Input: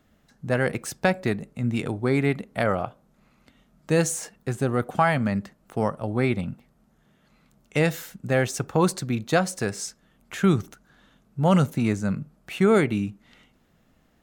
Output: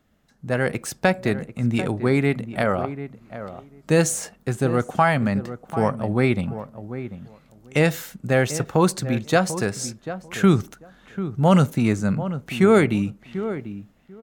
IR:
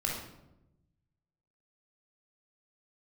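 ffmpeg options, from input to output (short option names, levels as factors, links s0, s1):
-filter_complex "[0:a]dynaudnorm=f=120:g=9:m=2.24,asplit=2[s0][s1];[s1]adelay=742,lowpass=f=1300:p=1,volume=0.266,asplit=2[s2][s3];[s3]adelay=742,lowpass=f=1300:p=1,volume=0.16[s4];[s2][s4]amix=inputs=2:normalize=0[s5];[s0][s5]amix=inputs=2:normalize=0,volume=0.75"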